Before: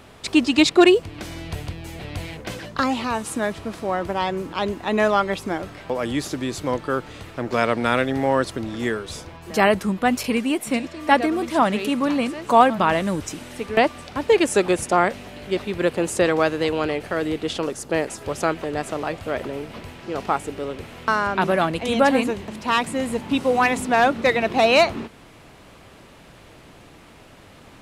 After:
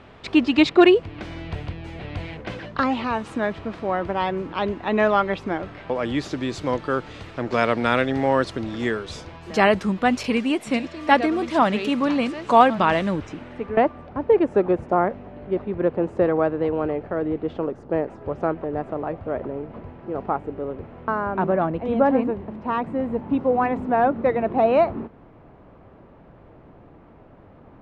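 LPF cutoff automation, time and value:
5.73 s 3000 Hz
6.63 s 5400 Hz
12.99 s 5400 Hz
13.28 s 2200 Hz
14.1 s 1000 Hz

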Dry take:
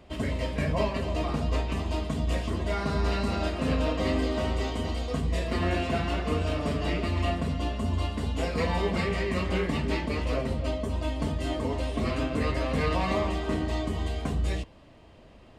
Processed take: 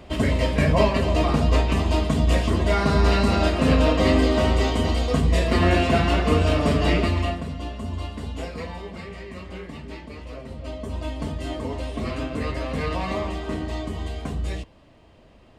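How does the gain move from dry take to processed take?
7.01 s +8.5 dB
7.45 s -2 dB
8.38 s -2 dB
8.83 s -9 dB
10.4 s -9 dB
10.94 s 0 dB

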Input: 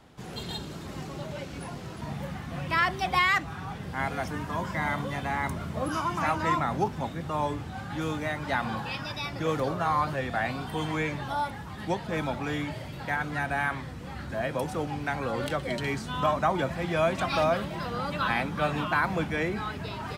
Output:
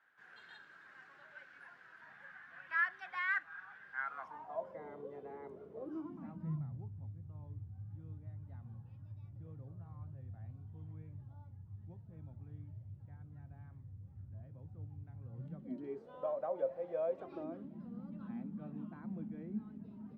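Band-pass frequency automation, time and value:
band-pass, Q 9.4
3.96 s 1600 Hz
4.87 s 430 Hz
5.79 s 430 Hz
6.84 s 100 Hz
15.23 s 100 Hz
16.1 s 540 Hz
17.05 s 540 Hz
17.78 s 220 Hz

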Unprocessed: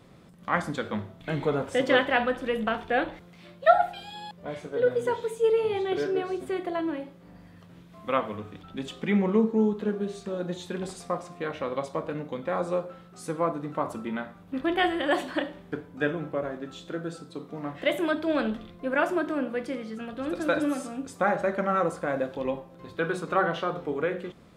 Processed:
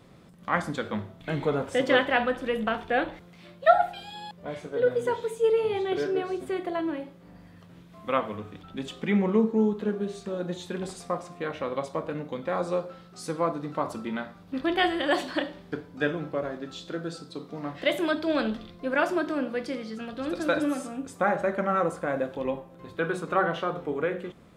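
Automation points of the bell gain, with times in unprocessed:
bell 4700 Hz 0.76 oct
12.09 s +0.5 dB
12.87 s +8 dB
20.26 s +8 dB
20.93 s -3 dB

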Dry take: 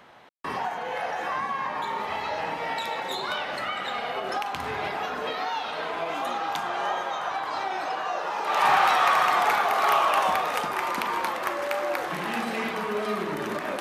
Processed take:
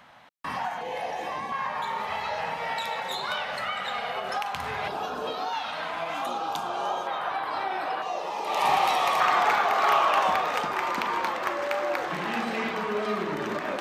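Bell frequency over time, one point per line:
bell -15 dB 0.48 oct
400 Hz
from 0.81 s 1400 Hz
from 1.52 s 320 Hz
from 4.88 s 2000 Hz
from 5.53 s 410 Hz
from 6.26 s 1900 Hz
from 7.07 s 6500 Hz
from 8.02 s 1500 Hz
from 9.2 s 11000 Hz

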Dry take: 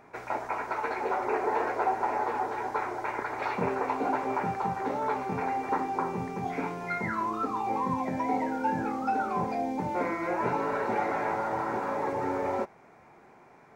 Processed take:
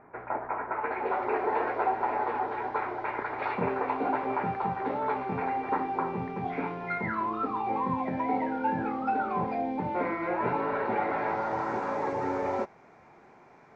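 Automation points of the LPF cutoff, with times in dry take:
LPF 24 dB/oct
0.68 s 1900 Hz
1.16 s 3700 Hz
11.08 s 3700 Hz
11.68 s 6900 Hz

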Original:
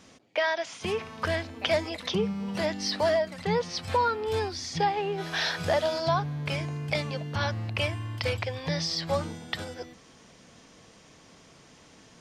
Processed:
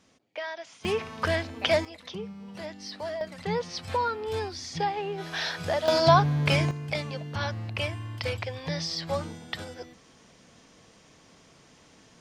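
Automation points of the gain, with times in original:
-9 dB
from 0.85 s +2 dB
from 1.85 s -10 dB
from 3.21 s -2.5 dB
from 5.88 s +7.5 dB
from 6.71 s -2 dB

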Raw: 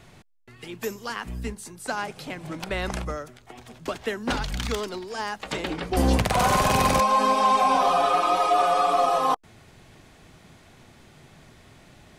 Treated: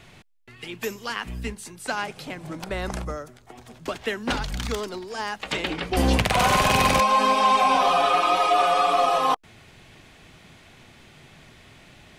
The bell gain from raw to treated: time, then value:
bell 2700 Hz 1.3 oct
1.95 s +6 dB
2.56 s -4 dB
3.58 s -4 dB
4.19 s +6.5 dB
4.47 s -1.5 dB
5.01 s -1.5 dB
5.52 s +6.5 dB

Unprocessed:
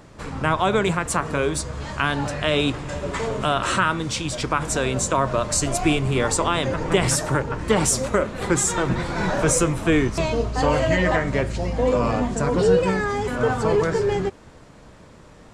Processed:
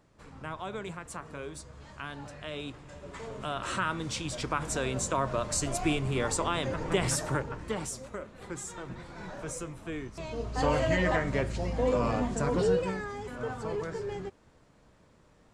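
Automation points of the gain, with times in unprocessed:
2.96 s -18 dB
4.05 s -8.5 dB
7.37 s -8.5 dB
7.99 s -19 dB
10.14 s -19 dB
10.62 s -7 dB
12.56 s -7 dB
13.12 s -14.5 dB

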